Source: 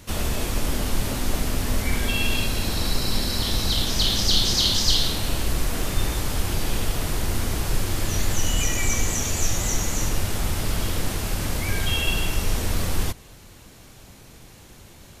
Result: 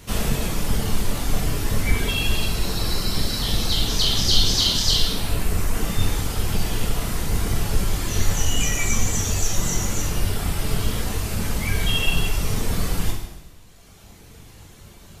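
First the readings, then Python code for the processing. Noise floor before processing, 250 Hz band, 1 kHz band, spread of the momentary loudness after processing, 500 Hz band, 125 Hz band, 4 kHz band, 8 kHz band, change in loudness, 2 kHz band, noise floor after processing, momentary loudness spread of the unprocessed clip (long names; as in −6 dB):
−47 dBFS, +1.5 dB, +0.5 dB, 8 LU, +0.5 dB, +2.0 dB, +1.0 dB, +0.5 dB, +1.0 dB, +0.5 dB, −46 dBFS, 8 LU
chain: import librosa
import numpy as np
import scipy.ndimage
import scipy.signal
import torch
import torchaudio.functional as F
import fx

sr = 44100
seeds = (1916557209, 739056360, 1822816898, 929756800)

y = fx.octave_divider(x, sr, octaves=1, level_db=0.0)
y = fx.dereverb_blind(y, sr, rt60_s=2.0)
y = fx.rev_double_slope(y, sr, seeds[0], early_s=0.89, late_s=2.6, knee_db=-18, drr_db=-1.5)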